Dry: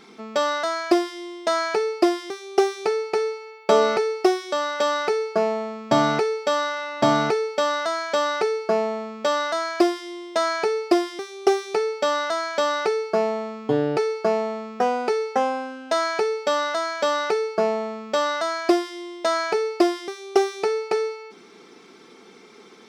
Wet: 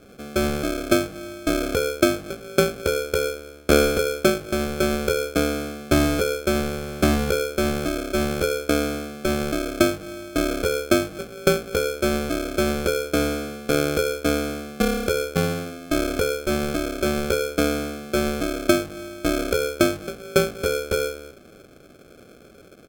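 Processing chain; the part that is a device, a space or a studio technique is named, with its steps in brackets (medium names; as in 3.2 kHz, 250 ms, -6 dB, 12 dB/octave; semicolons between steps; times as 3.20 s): crushed at another speed (playback speed 1.25×; sample-and-hold 37×; playback speed 0.8×)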